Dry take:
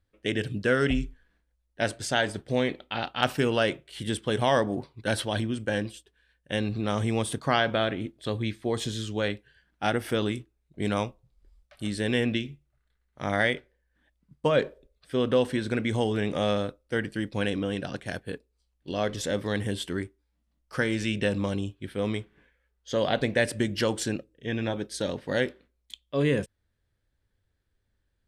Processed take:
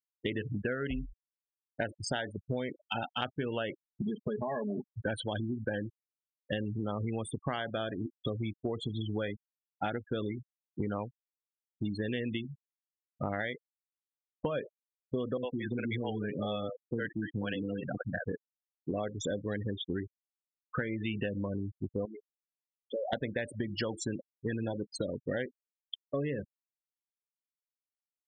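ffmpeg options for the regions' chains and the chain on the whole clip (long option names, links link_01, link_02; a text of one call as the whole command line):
ffmpeg -i in.wav -filter_complex "[0:a]asettb=1/sr,asplit=3[link_01][link_02][link_03];[link_01]atrim=end=3.874[link_04];[link_02]atrim=start=3.87:end=4.92,asetpts=PTS-STARTPTS,afade=type=in:duration=0.004:curve=qsin,afade=type=out:start_time=1.046:duration=0.004:curve=qsin,lowpass=frequency=2200:poles=1,aecho=1:1:4.8:0.74,atrim=end_sample=46305,acompressor=threshold=-29dB:ratio=3:attack=3.2:release=140:knee=1:detection=peak[link_05];[link_03]atrim=start=4.916[link_06];[link_04][link_05]acrossfade=duration=0.004:curve1=hsin:curve2=qsin[link_07];[link_07][link_06]acrossfade=duration=0.004:curve1=qsin:curve2=hsin,asettb=1/sr,asplit=3[link_08][link_09][link_10];[link_08]atrim=end=15.374[link_11];[link_09]atrim=start=15.37:end=18.25,asetpts=PTS-STARTPTS,afade=type=in:duration=0.004:curve=qsin,afade=type=out:start_time=2.876:duration=0.004:curve=qsin,highpass=94,highshelf=frequency=5200:gain=3.5,acrossover=split=420[link_12][link_13];[link_13]adelay=60[link_14];[link_12][link_14]amix=inputs=2:normalize=0,atrim=end_sample=127008[link_15];[link_10]atrim=start=18.246[link_16];[link_11][link_15]acrossfade=duration=0.004:curve1=hsin:curve2=qsin[link_17];[link_17][link_16]acrossfade=duration=0.004:curve1=qsin:curve2=hsin,asettb=1/sr,asplit=3[link_18][link_19][link_20];[link_18]atrim=end=22.054[link_21];[link_19]atrim=start=22.05:end=23.13,asetpts=PTS-STARTPTS,afade=type=in:duration=0.004:curve=qsin,afade=type=out:start_time=1.076:duration=0.004:curve=qsin,highpass=frequency=400:poles=1,acompressor=threshold=-39dB:ratio=2:attack=3.2:release=140:knee=1:detection=peak[link_22];[link_20]atrim=start=23.126[link_23];[link_21][link_22]acrossfade=duration=0.004:curve1=hsin:curve2=qsin[link_24];[link_24][link_23]acrossfade=duration=0.004:curve1=qsin:curve2=hsin,afftfilt=real='re*gte(hypot(re,im),0.0501)':imag='im*gte(hypot(re,im),0.0501)':win_size=1024:overlap=0.75,acompressor=threshold=-36dB:ratio=10,volume=5dB" out.wav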